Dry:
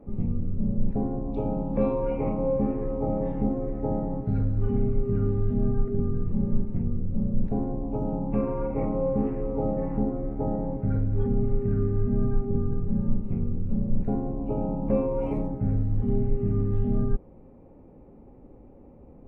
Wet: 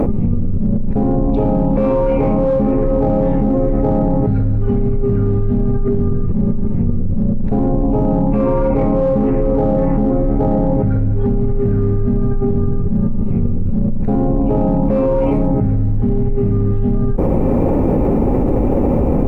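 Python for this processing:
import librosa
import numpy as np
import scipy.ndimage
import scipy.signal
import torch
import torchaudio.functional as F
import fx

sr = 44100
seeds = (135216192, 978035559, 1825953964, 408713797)

p1 = np.clip(x, -10.0 ** (-24.0 / 20.0), 10.0 ** (-24.0 / 20.0))
p2 = x + (p1 * librosa.db_to_amplitude(-7.0))
p3 = fx.env_flatten(p2, sr, amount_pct=100)
y = p3 * librosa.db_to_amplitude(1.0)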